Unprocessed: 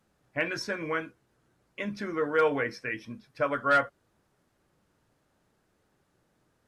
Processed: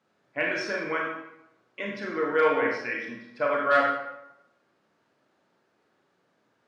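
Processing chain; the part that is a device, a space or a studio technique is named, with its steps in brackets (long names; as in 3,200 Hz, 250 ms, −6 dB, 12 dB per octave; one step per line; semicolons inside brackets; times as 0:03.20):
supermarket ceiling speaker (band-pass filter 240–5,100 Hz; convolution reverb RT60 0.85 s, pre-delay 29 ms, DRR −1.5 dB)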